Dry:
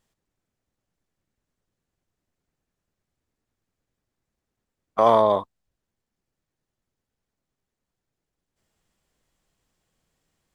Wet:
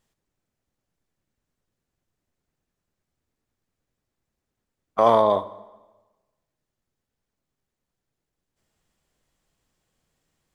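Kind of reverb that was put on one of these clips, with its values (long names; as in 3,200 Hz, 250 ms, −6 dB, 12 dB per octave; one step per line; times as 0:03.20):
dense smooth reverb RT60 1.2 s, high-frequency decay 0.85×, DRR 15 dB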